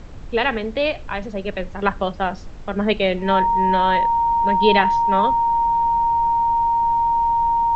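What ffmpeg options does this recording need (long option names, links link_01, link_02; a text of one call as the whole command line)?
ffmpeg -i in.wav -af "bandreject=frequency=930:width=30,afftdn=noise_reduction=30:noise_floor=-33" out.wav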